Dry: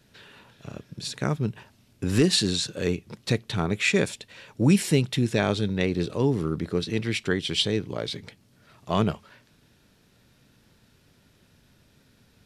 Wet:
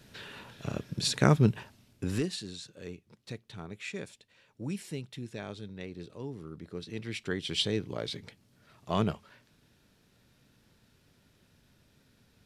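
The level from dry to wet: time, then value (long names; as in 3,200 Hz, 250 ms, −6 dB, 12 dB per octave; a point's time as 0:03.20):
0:01.48 +4 dB
0:02.09 −6 dB
0:02.37 −17 dB
0:06.46 −17 dB
0:07.63 −5 dB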